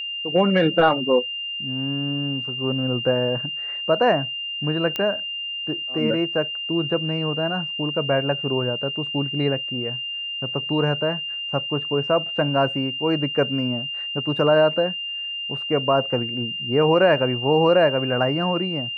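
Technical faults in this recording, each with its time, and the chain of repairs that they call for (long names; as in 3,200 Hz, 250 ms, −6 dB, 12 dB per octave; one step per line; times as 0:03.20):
whistle 2,800 Hz −27 dBFS
0:04.96: click −12 dBFS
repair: click removal
notch filter 2,800 Hz, Q 30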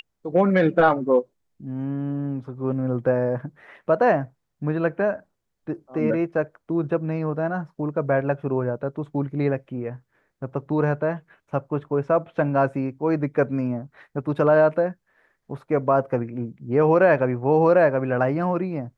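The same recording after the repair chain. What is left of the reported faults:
none of them is left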